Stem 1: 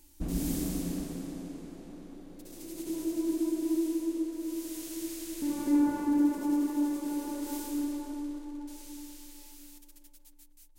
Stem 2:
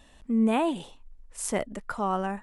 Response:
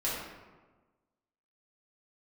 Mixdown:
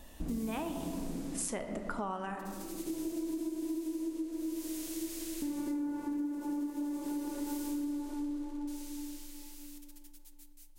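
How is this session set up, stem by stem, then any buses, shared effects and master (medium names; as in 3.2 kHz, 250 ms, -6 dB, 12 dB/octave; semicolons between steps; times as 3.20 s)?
-1.5 dB, 0.00 s, send -14 dB, none
+1.5 dB, 0.00 s, send -12 dB, harmonic tremolo 1.1 Hz, depth 50%, crossover 870 Hz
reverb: on, RT60 1.3 s, pre-delay 3 ms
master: compression 12:1, threshold -33 dBFS, peak gain reduction 15.5 dB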